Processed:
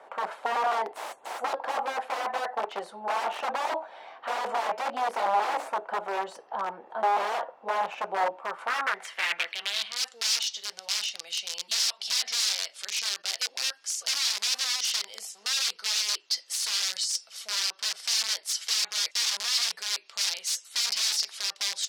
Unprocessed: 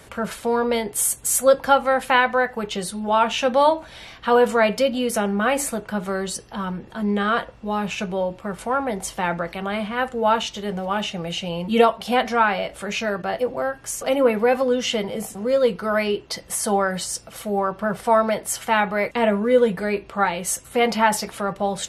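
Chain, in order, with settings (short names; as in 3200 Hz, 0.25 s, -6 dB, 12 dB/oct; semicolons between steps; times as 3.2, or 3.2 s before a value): wrapped overs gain 19 dB; HPF 350 Hz 12 dB/oct; band-pass sweep 800 Hz -> 5000 Hz, 8.3–10.04; gain +5.5 dB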